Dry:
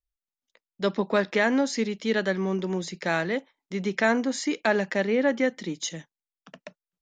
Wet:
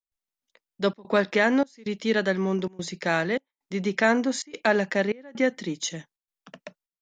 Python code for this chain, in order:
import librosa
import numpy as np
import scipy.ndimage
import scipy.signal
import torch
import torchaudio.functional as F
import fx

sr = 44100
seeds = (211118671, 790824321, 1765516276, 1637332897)

y = fx.step_gate(x, sr, bpm=129, pattern='.xxxxxxx.xxxxx.', floor_db=-24.0, edge_ms=4.5)
y = y * 10.0 ** (1.5 / 20.0)